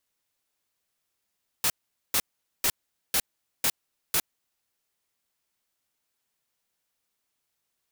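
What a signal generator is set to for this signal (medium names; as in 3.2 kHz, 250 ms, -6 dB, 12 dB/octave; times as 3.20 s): noise bursts white, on 0.06 s, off 0.44 s, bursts 6, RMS -23.5 dBFS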